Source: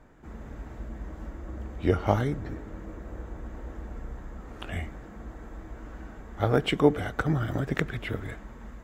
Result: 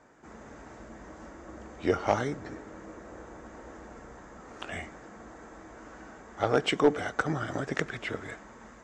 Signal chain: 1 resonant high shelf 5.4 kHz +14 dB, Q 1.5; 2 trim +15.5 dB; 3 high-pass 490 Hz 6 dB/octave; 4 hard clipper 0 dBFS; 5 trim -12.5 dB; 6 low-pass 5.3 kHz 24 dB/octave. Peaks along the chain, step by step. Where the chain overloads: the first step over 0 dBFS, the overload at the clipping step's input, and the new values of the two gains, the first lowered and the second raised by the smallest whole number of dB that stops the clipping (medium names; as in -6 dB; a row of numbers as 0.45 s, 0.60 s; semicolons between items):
-7.0 dBFS, +8.5 dBFS, +7.5 dBFS, 0.0 dBFS, -12.5 dBFS, -11.5 dBFS; step 2, 7.5 dB; step 2 +7.5 dB, step 5 -4.5 dB